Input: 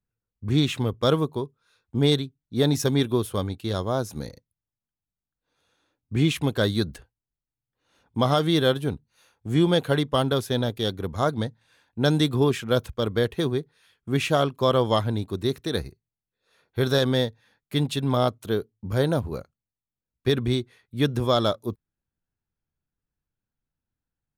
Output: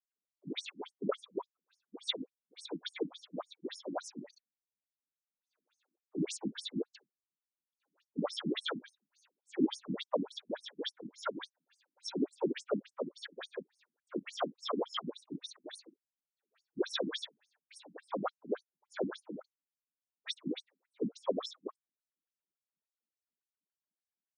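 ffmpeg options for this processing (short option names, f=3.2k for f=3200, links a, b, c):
-af "lowshelf=f=310:g=-7,afftfilt=real='hypot(re,im)*cos(2*PI*random(0))':imag='hypot(re,im)*sin(2*PI*random(1))':win_size=512:overlap=0.75,afftfilt=real='re*between(b*sr/1024,220*pow(7400/220,0.5+0.5*sin(2*PI*3.5*pts/sr))/1.41,220*pow(7400/220,0.5+0.5*sin(2*PI*3.5*pts/sr))*1.41)':imag='im*between(b*sr/1024,220*pow(7400/220,0.5+0.5*sin(2*PI*3.5*pts/sr))/1.41,220*pow(7400/220,0.5+0.5*sin(2*PI*3.5*pts/sr))*1.41)':win_size=1024:overlap=0.75,volume=3dB"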